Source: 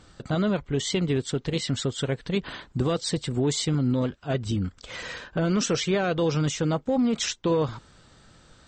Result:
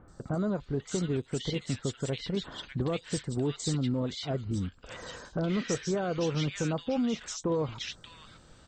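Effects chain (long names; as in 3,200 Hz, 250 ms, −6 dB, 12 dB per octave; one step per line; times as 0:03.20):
in parallel at +1 dB: downward compressor, threshold −35 dBFS, peak gain reduction 14 dB
on the sum: three-band delay without the direct sound lows, highs, mids 80/600 ms, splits 1,600/4,900 Hz
level −7.5 dB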